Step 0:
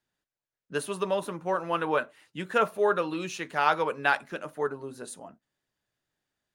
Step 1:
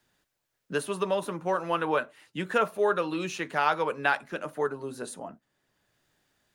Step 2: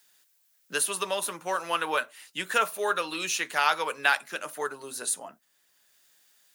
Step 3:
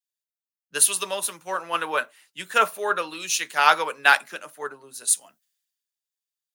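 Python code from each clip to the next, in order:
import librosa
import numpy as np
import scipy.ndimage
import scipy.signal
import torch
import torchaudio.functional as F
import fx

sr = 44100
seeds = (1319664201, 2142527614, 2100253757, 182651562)

y1 = fx.band_squash(x, sr, depth_pct=40)
y2 = fx.tilt_eq(y1, sr, slope=4.5)
y3 = fx.band_widen(y2, sr, depth_pct=100)
y3 = y3 * librosa.db_to_amplitude(2.0)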